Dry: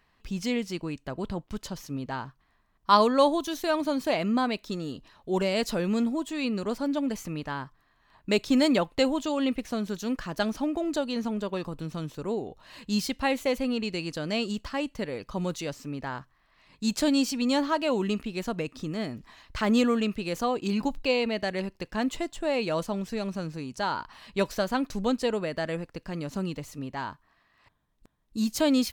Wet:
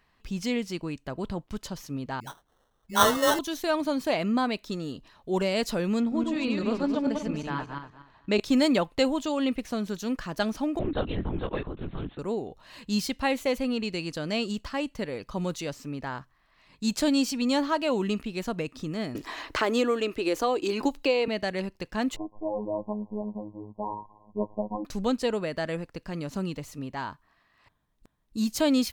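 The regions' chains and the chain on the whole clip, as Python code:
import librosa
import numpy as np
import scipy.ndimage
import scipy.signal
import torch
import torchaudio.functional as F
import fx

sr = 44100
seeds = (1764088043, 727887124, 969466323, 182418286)

y = fx.chain(x, sr, fx.tilt_shelf(db=-3.5, hz=1400.0),
    fx.dispersion(late='highs', ms=100.0, hz=640.0),
    fx.sample_hold(seeds[0], rate_hz=2400.0, jitter_pct=0), at=(2.2, 3.39))
y = fx.chain(y, sr, fx.reverse_delay_fb(ms=119, feedback_pct=44, wet_db=-2.5),
    fx.air_absorb(metres=90.0), at=(6.0, 8.4))
y = fx.chain(y, sr, fx.peak_eq(hz=1800.0, db=5.5, octaves=0.22),
    fx.lpc_vocoder(seeds[1], excitation='whisper', order=10), at=(10.79, 12.19))
y = fx.chain(y, sr, fx.low_shelf_res(hz=250.0, db=-7.5, q=3.0),
    fx.band_squash(depth_pct=70), at=(19.15, 21.28))
y = fx.chain(y, sr, fx.cvsd(bps=16000),
    fx.brickwall_lowpass(high_hz=1100.0),
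    fx.robotise(hz=105.0), at=(22.16, 24.85))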